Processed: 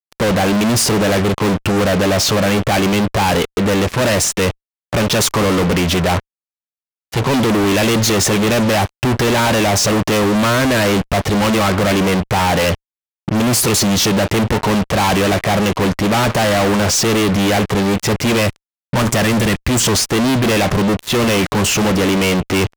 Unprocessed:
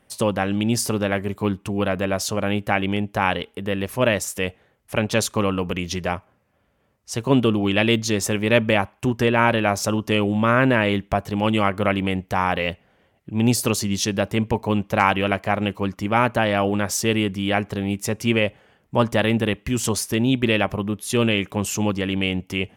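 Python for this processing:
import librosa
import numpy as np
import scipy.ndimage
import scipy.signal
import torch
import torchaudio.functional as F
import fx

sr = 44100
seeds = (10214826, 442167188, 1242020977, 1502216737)

y = fx.env_lowpass(x, sr, base_hz=1200.0, full_db=-15.5)
y = fx.graphic_eq_10(y, sr, hz=(500, 4000, 8000), db=(-7, -4, 11), at=(18.41, 19.8))
y = fx.fuzz(y, sr, gain_db=42.0, gate_db=-43.0)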